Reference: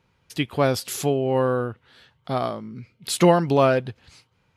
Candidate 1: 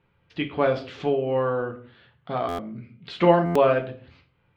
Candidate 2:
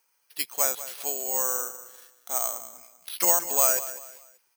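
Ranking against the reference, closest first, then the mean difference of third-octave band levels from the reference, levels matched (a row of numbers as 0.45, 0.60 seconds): 1, 2; 5.5, 14.0 decibels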